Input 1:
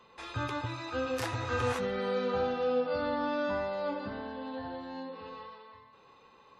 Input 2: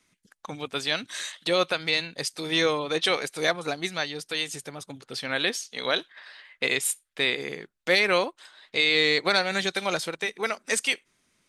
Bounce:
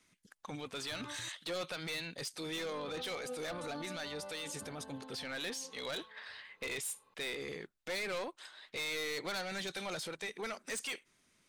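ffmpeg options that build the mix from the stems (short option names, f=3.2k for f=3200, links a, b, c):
-filter_complex "[0:a]adelay=550,volume=-11.5dB,asplit=3[a][b][c];[a]atrim=end=1.29,asetpts=PTS-STARTPTS,afade=t=out:st=1.286:d=0.004:c=hsin[d];[b]atrim=start=1.29:end=2.56,asetpts=PTS-STARTPTS,volume=0[e];[c]atrim=start=2.56,asetpts=PTS-STARTPTS,afade=t=in:d=0.004:c=hsin[f];[d][e][f]concat=n=3:v=0:a=1[g];[1:a]asoftclip=type=tanh:threshold=-25.5dB,volume=-2.5dB[h];[g][h]amix=inputs=2:normalize=0,alimiter=level_in=10.5dB:limit=-24dB:level=0:latency=1:release=12,volume=-10.5dB"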